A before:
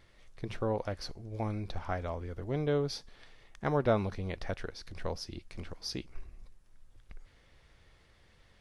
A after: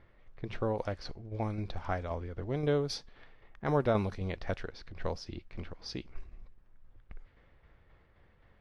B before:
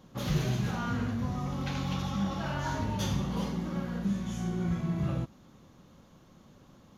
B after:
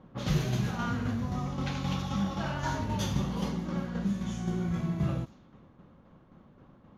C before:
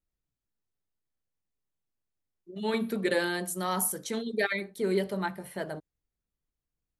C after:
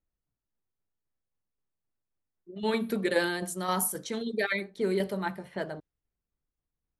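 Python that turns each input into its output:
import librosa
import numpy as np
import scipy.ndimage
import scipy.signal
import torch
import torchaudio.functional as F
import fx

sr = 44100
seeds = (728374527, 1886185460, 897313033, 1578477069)

y = fx.vibrato(x, sr, rate_hz=11.0, depth_cents=15.0)
y = fx.env_lowpass(y, sr, base_hz=1700.0, full_db=-27.5)
y = fx.tremolo_shape(y, sr, shape='saw_down', hz=3.8, depth_pct=45)
y = F.gain(torch.from_numpy(y), 2.5).numpy()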